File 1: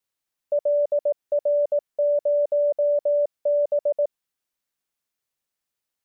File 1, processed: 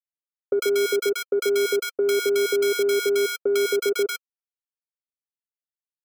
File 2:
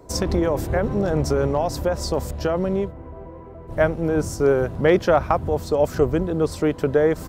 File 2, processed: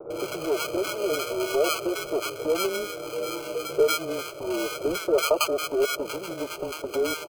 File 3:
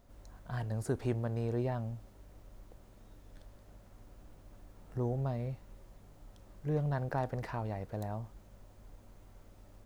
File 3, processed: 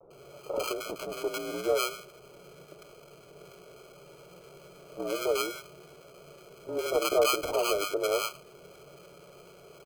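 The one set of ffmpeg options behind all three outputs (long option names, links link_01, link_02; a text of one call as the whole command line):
ffmpeg -i in.wav -filter_complex "[0:a]highshelf=frequency=2300:gain=-3,aecho=1:1:3.6:0.98,acompressor=threshold=-32dB:ratio=4,asoftclip=type=tanh:threshold=-26.5dB,afreqshift=-180,adynamicsmooth=sensitivity=7.5:basefreq=670,acrusher=bits=10:mix=0:aa=0.000001,highpass=frequency=520:width_type=q:width=5.9,acrusher=samples=24:mix=1:aa=0.000001,acrossover=split=970[link_01][link_02];[link_02]adelay=100[link_03];[link_01][link_03]amix=inputs=2:normalize=0,volume=8.5dB" out.wav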